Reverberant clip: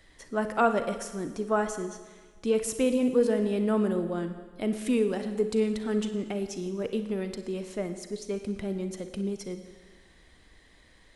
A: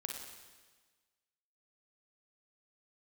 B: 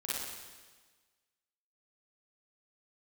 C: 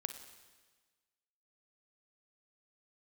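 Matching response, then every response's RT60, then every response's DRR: C; 1.4 s, 1.4 s, 1.4 s; 1.0 dB, -9.0 dB, 8.0 dB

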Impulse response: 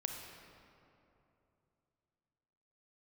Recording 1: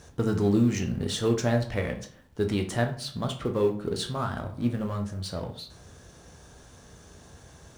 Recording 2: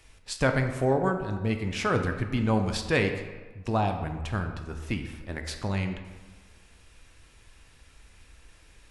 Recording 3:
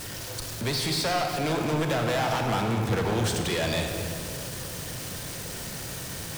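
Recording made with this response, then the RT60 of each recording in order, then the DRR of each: 3; 0.55 s, 1.4 s, 2.9 s; 4.0 dB, 5.5 dB, 2.5 dB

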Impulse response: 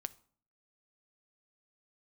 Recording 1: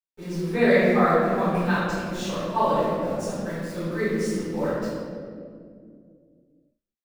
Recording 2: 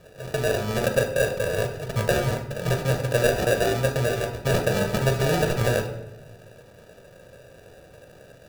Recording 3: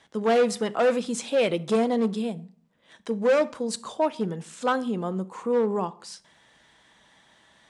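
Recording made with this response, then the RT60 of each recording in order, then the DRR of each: 3; 2.3 s, 0.90 s, 0.50 s; -16.5 dB, 4.0 dB, 13.5 dB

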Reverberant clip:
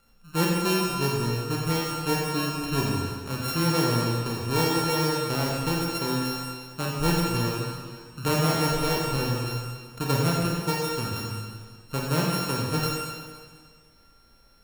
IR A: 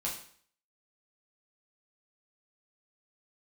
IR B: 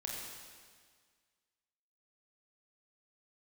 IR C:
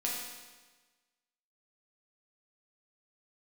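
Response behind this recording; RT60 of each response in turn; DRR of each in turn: B; 0.55 s, 1.8 s, 1.3 s; -4.5 dB, -3.0 dB, -4.5 dB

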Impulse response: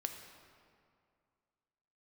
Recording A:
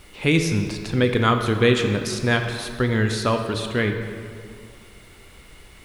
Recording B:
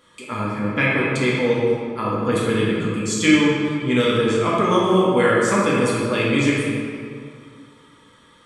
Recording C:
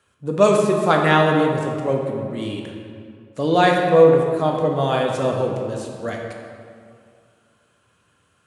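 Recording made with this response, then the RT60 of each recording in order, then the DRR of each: A; 2.3 s, 2.3 s, 2.3 s; 4.5 dB, -6.0 dB, 0.0 dB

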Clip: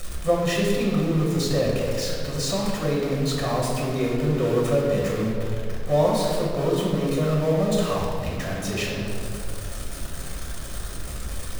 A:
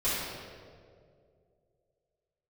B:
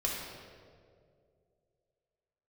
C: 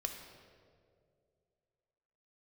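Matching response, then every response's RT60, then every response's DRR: B; 2.3 s, 2.3 s, 2.3 s; -13.5 dB, -3.5 dB, 3.5 dB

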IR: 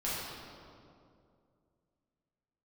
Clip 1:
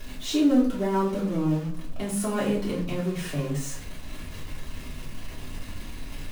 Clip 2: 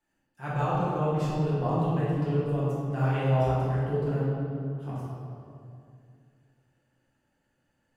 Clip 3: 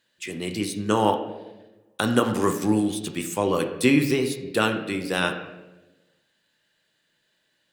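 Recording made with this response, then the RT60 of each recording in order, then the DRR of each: 2; 0.50 s, 2.4 s, 1.1 s; -6.5 dB, -9.0 dB, 5.0 dB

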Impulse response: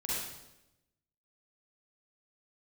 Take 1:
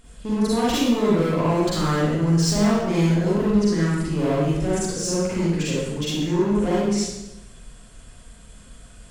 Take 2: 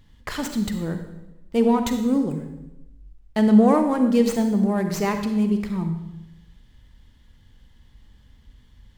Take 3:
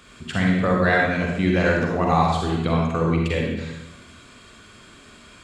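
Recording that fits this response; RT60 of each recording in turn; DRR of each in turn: 1; 0.95 s, 0.95 s, 0.95 s; -8.0 dB, 6.5 dB, -1.5 dB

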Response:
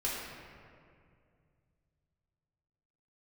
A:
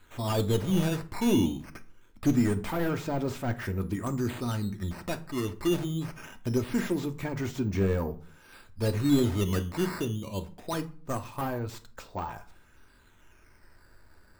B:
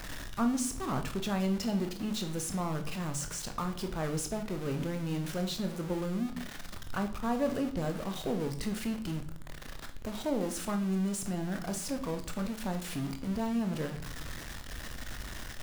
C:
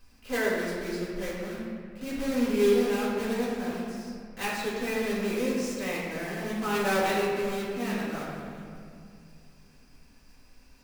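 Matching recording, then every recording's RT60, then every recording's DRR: C; 0.45 s, 0.60 s, 2.3 s; 7.0 dB, 6.0 dB, -7.0 dB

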